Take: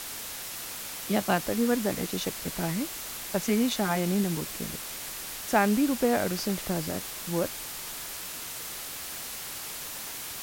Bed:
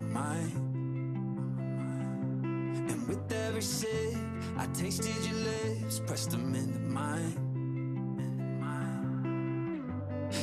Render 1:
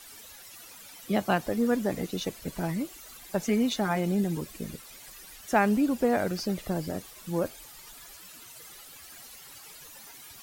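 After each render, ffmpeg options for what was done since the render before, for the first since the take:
ffmpeg -i in.wav -af "afftdn=noise_reduction=14:noise_floor=-38" out.wav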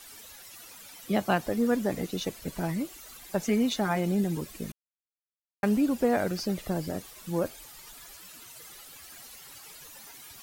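ffmpeg -i in.wav -filter_complex "[0:a]asplit=3[link_01][link_02][link_03];[link_01]atrim=end=4.72,asetpts=PTS-STARTPTS,afade=type=out:start_time=4.716:duration=0.004:curve=hsin[link_04];[link_02]atrim=start=4.72:end=5.63,asetpts=PTS-STARTPTS,volume=0[link_05];[link_03]atrim=start=5.63,asetpts=PTS-STARTPTS,afade=type=in:duration=0.004:curve=hsin[link_06];[link_04][link_05][link_06]concat=n=3:v=0:a=1" out.wav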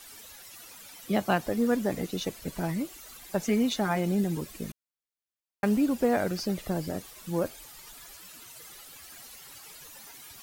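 ffmpeg -i in.wav -af "acrusher=bits=8:mode=log:mix=0:aa=0.000001" out.wav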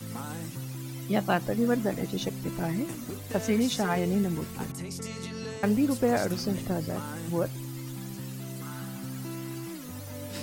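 ffmpeg -i in.wav -i bed.wav -filter_complex "[1:a]volume=-3.5dB[link_01];[0:a][link_01]amix=inputs=2:normalize=0" out.wav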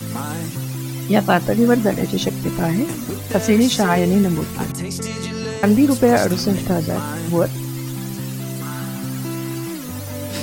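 ffmpeg -i in.wav -af "volume=11dB,alimiter=limit=-2dB:level=0:latency=1" out.wav

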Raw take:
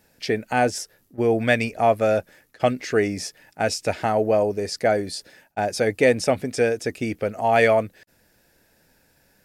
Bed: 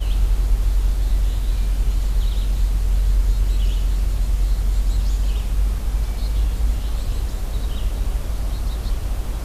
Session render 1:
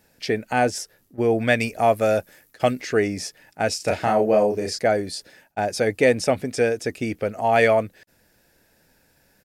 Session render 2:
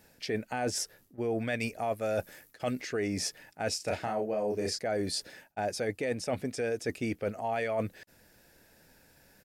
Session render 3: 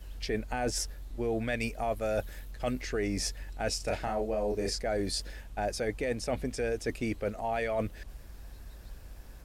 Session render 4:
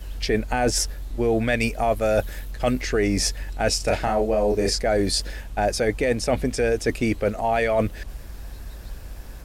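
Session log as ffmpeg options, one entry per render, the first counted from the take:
ffmpeg -i in.wav -filter_complex "[0:a]asettb=1/sr,asplit=3[link_01][link_02][link_03];[link_01]atrim=end=1.604[link_04];[link_02]atrim=start=1.6:end=2.82,asetpts=PTS-STARTPTS,afade=type=in:duration=0.004:curve=qsin,afade=type=out:start_time=1.216:duration=0.004:curve=qsin,highshelf=frequency=7300:gain=10[link_05];[link_03]atrim=start=2.816[link_06];[link_04][link_05]acrossfade=duration=0.004:curve1=hsin:curve2=qsin[link_07];[link_07][link_06]acrossfade=duration=0.004:curve1=qsin:curve2=hsin,asplit=3[link_08][link_09][link_10];[link_08]afade=type=out:start_time=3.79:duration=0.02[link_11];[link_09]asplit=2[link_12][link_13];[link_13]adelay=33,volume=-3dB[link_14];[link_12][link_14]amix=inputs=2:normalize=0,afade=type=in:start_time=3.79:duration=0.02,afade=type=out:start_time=4.77:duration=0.02[link_15];[link_10]afade=type=in:start_time=4.77:duration=0.02[link_16];[link_11][link_15][link_16]amix=inputs=3:normalize=0" out.wav
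ffmpeg -i in.wav -af "alimiter=limit=-12dB:level=0:latency=1:release=236,areverse,acompressor=threshold=-29dB:ratio=6,areverse" out.wav
ffmpeg -i in.wav -i bed.wav -filter_complex "[1:a]volume=-23.5dB[link_01];[0:a][link_01]amix=inputs=2:normalize=0" out.wav
ffmpeg -i in.wav -af "volume=10dB" out.wav

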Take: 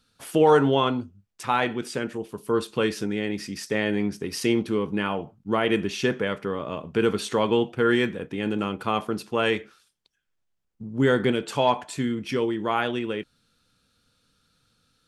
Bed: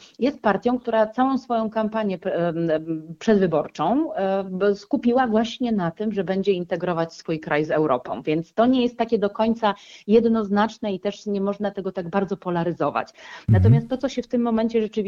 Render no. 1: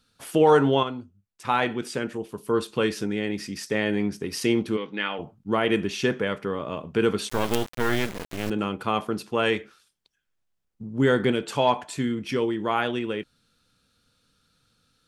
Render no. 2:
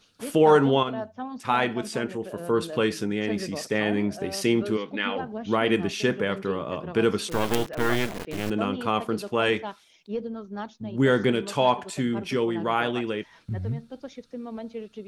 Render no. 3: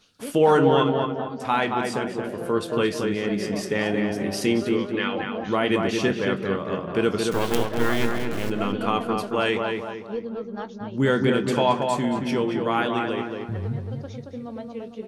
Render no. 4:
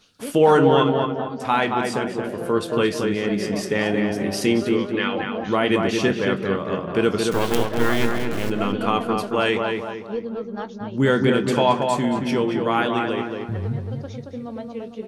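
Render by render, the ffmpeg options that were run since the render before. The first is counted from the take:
ffmpeg -i in.wav -filter_complex "[0:a]asplit=3[link_01][link_02][link_03];[link_01]afade=type=out:start_time=4.76:duration=0.02[link_04];[link_02]highpass=340,equalizer=frequency=390:width_type=q:width=4:gain=-7,equalizer=frequency=670:width_type=q:width=4:gain=-5,equalizer=frequency=1000:width_type=q:width=4:gain=-6,equalizer=frequency=2000:width_type=q:width=4:gain=7,equalizer=frequency=3600:width_type=q:width=4:gain=9,lowpass=frequency=5200:width=0.5412,lowpass=frequency=5200:width=1.3066,afade=type=in:start_time=4.76:duration=0.02,afade=type=out:start_time=5.18:duration=0.02[link_05];[link_03]afade=type=in:start_time=5.18:duration=0.02[link_06];[link_04][link_05][link_06]amix=inputs=3:normalize=0,asettb=1/sr,asplit=3[link_07][link_08][link_09];[link_07]atrim=end=7.294[link_10];[link_08]atrim=start=7.29:end=8.5,asetpts=PTS-STARTPTS,afade=type=in:duration=0.004:curve=qsin,afade=type=out:start_time=1.206:duration=0.004:curve=qsin,acrusher=bits=3:dc=4:mix=0:aa=0.000001[link_11];[link_09]atrim=start=8.496[link_12];[link_10][link_11]acrossfade=duration=0.004:curve1=hsin:curve2=qsin[link_13];[link_13][link_12]acrossfade=duration=0.004:curve1=qsin:curve2=hsin,asplit=3[link_14][link_15][link_16];[link_14]atrim=end=0.832[link_17];[link_15]atrim=start=0.828:end=1.452,asetpts=PTS-STARTPTS,volume=-7.5dB[link_18];[link_16]atrim=start=1.448[link_19];[link_17][link_18]acrossfade=duration=0.004:curve1=hsin:curve2=hsin[link_20];[link_20][link_19]acrossfade=duration=0.004:curve1=hsin:curve2=hsin" out.wav
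ffmpeg -i in.wav -i bed.wav -filter_complex "[1:a]volume=-15dB[link_01];[0:a][link_01]amix=inputs=2:normalize=0" out.wav
ffmpeg -i in.wav -filter_complex "[0:a]asplit=2[link_01][link_02];[link_02]adelay=21,volume=-12.5dB[link_03];[link_01][link_03]amix=inputs=2:normalize=0,asplit=2[link_04][link_05];[link_05]adelay=225,lowpass=frequency=2200:poles=1,volume=-3.5dB,asplit=2[link_06][link_07];[link_07]adelay=225,lowpass=frequency=2200:poles=1,volume=0.45,asplit=2[link_08][link_09];[link_09]adelay=225,lowpass=frequency=2200:poles=1,volume=0.45,asplit=2[link_10][link_11];[link_11]adelay=225,lowpass=frequency=2200:poles=1,volume=0.45,asplit=2[link_12][link_13];[link_13]adelay=225,lowpass=frequency=2200:poles=1,volume=0.45,asplit=2[link_14][link_15];[link_15]adelay=225,lowpass=frequency=2200:poles=1,volume=0.45[link_16];[link_06][link_08][link_10][link_12][link_14][link_16]amix=inputs=6:normalize=0[link_17];[link_04][link_17]amix=inputs=2:normalize=0" out.wav
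ffmpeg -i in.wav -af "volume=2.5dB,alimiter=limit=-3dB:level=0:latency=1" out.wav

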